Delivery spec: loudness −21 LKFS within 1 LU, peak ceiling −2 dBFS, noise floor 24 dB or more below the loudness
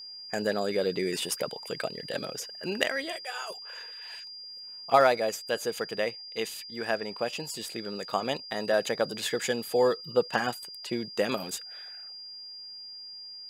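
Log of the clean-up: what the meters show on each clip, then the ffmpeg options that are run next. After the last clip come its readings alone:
interfering tone 4,800 Hz; level of the tone −41 dBFS; integrated loudness −31.0 LKFS; sample peak −8.5 dBFS; target loudness −21.0 LKFS
→ -af "bandreject=frequency=4800:width=30"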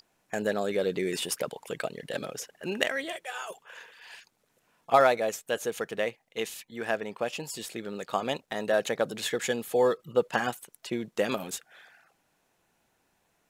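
interfering tone none found; integrated loudness −30.5 LKFS; sample peak −8.5 dBFS; target loudness −21.0 LKFS
→ -af "volume=9.5dB,alimiter=limit=-2dB:level=0:latency=1"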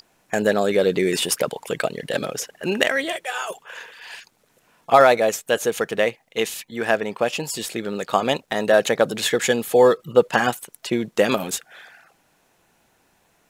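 integrated loudness −21.5 LKFS; sample peak −2.0 dBFS; background noise floor −64 dBFS

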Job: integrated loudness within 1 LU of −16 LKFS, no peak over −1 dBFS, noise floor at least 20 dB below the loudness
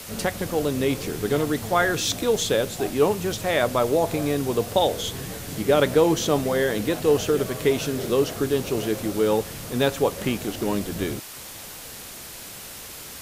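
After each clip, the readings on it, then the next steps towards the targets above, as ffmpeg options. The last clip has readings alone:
background noise floor −39 dBFS; target noise floor −44 dBFS; integrated loudness −23.5 LKFS; sample peak −6.5 dBFS; target loudness −16.0 LKFS
→ -af "afftdn=noise_reduction=6:noise_floor=-39"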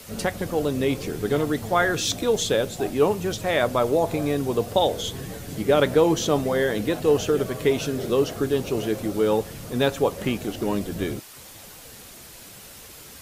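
background noise floor −44 dBFS; integrated loudness −23.5 LKFS; sample peak −6.5 dBFS; target loudness −16.0 LKFS
→ -af "volume=7.5dB,alimiter=limit=-1dB:level=0:latency=1"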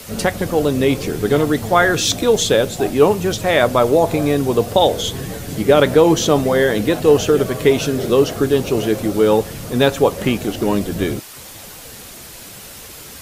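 integrated loudness −16.5 LKFS; sample peak −1.0 dBFS; background noise floor −37 dBFS

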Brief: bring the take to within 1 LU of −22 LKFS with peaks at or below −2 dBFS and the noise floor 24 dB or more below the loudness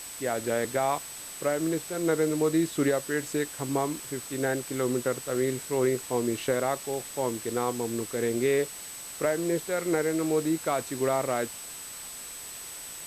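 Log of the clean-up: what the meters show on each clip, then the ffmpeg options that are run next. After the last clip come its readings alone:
interfering tone 8,000 Hz; level of the tone −41 dBFS; background noise floor −41 dBFS; target noise floor −53 dBFS; integrated loudness −29.0 LKFS; sample peak −14.0 dBFS; target loudness −22.0 LKFS
→ -af "bandreject=frequency=8000:width=30"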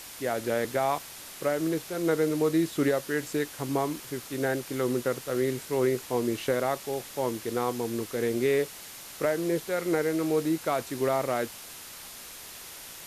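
interfering tone none found; background noise floor −44 dBFS; target noise floor −53 dBFS
→ -af "afftdn=noise_reduction=9:noise_floor=-44"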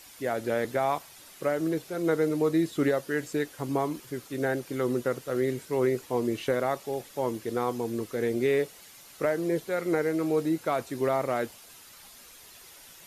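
background noise floor −51 dBFS; target noise floor −53 dBFS
→ -af "afftdn=noise_reduction=6:noise_floor=-51"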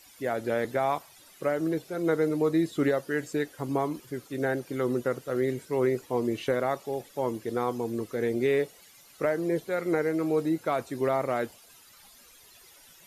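background noise floor −55 dBFS; integrated loudness −29.0 LKFS; sample peak −14.5 dBFS; target loudness −22.0 LKFS
→ -af "volume=7dB"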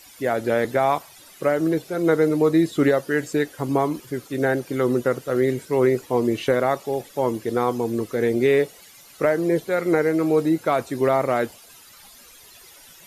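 integrated loudness −22.0 LKFS; sample peak −7.5 dBFS; background noise floor −48 dBFS

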